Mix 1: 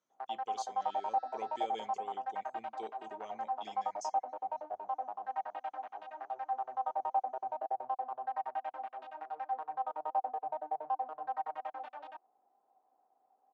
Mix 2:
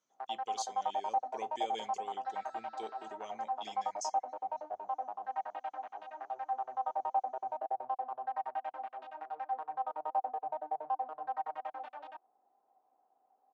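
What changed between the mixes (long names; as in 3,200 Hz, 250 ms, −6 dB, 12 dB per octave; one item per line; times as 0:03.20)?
speech: add high-shelf EQ 2,900 Hz +8.5 dB
second sound: entry +1.45 s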